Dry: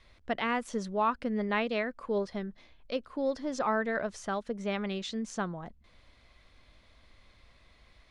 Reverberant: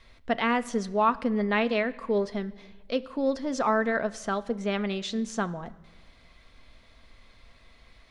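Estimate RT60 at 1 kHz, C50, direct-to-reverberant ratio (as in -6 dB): 1.2 s, 19.5 dB, 10.5 dB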